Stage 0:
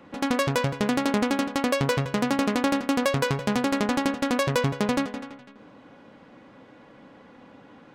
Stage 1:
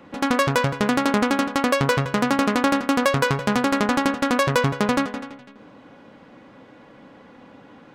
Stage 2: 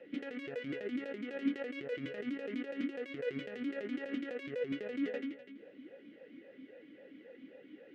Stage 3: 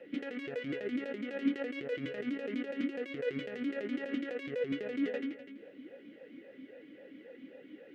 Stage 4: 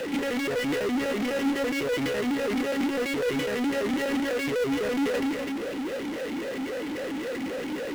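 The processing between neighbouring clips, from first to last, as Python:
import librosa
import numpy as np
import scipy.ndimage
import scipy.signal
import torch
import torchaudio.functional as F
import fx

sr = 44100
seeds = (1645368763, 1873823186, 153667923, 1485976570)

y1 = fx.dynamic_eq(x, sr, hz=1300.0, q=1.5, threshold_db=-42.0, ratio=4.0, max_db=5)
y1 = y1 * 10.0 ** (3.0 / 20.0)
y2 = fx.over_compress(y1, sr, threshold_db=-26.0, ratio=-1.0)
y2 = fx.vowel_sweep(y2, sr, vowels='e-i', hz=3.7)
y2 = y2 * 10.0 ** (-2.5 / 20.0)
y3 = y2 + 10.0 ** (-19.0 / 20.0) * np.pad(y2, (int(167 * sr / 1000.0), 0))[:len(y2)]
y3 = y3 * 10.0 ** (2.5 / 20.0)
y4 = fx.power_curve(y3, sr, exponent=0.35)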